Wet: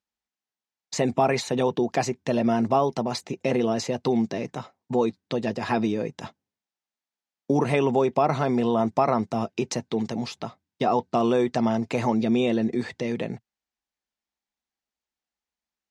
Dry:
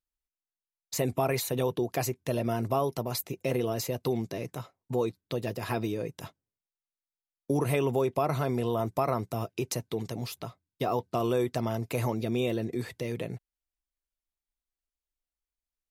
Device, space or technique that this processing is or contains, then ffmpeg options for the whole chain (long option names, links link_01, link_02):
car door speaker: -af "highpass=97,equalizer=frequency=120:width_type=q:width=4:gain=-5,equalizer=frequency=220:width_type=q:width=4:gain=8,equalizer=frequency=820:width_type=q:width=4:gain=6,equalizer=frequency=1800:width_type=q:width=4:gain=3,lowpass=frequency=7000:width=0.5412,lowpass=frequency=7000:width=1.3066,volume=4.5dB"